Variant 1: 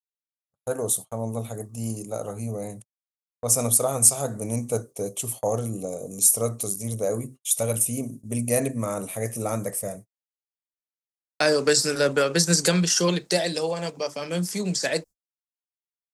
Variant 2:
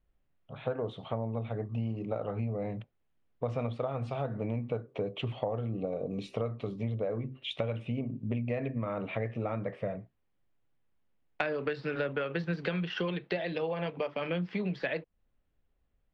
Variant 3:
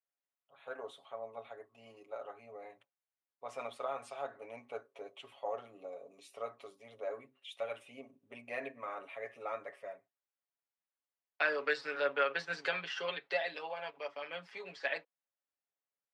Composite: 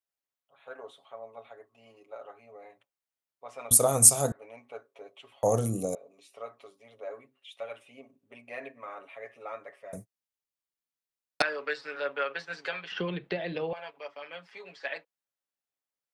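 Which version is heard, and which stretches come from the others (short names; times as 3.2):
3
3.71–4.32 from 1
5.43–5.95 from 1
9.93–11.42 from 1
12.92–13.73 from 2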